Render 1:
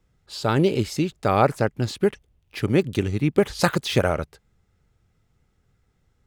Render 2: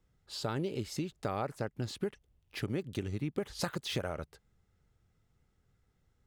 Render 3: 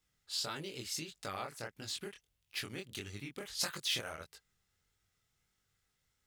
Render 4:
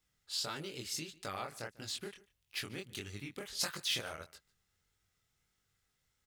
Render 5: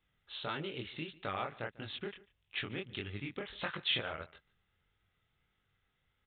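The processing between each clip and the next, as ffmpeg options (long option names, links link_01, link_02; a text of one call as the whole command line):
ffmpeg -i in.wav -af "equalizer=frequency=2400:width=7.4:gain=-2.5,acompressor=threshold=-26dB:ratio=4,volume=-6.5dB" out.wav
ffmpeg -i in.wav -af "tiltshelf=frequency=1200:gain=-9.5,flanger=delay=19.5:depth=6.8:speed=1.6" out.wav
ffmpeg -i in.wav -filter_complex "[0:a]asplit=2[link_01][link_02];[link_02]adelay=145.8,volume=-21dB,highshelf=frequency=4000:gain=-3.28[link_03];[link_01][link_03]amix=inputs=2:normalize=0" out.wav
ffmpeg -i in.wav -af "aresample=8000,aresample=44100,volume=3.5dB" out.wav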